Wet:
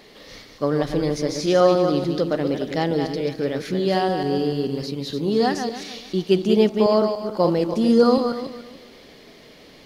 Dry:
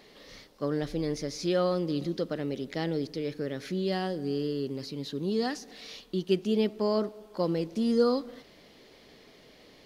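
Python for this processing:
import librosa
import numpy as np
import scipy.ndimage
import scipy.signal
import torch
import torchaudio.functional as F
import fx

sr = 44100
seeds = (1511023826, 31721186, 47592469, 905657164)

y = fx.reverse_delay_fb(x, sr, ms=146, feedback_pct=48, wet_db=-6.0)
y = fx.dynamic_eq(y, sr, hz=810.0, q=1.4, threshold_db=-42.0, ratio=4.0, max_db=6)
y = y * librosa.db_to_amplitude(7.0)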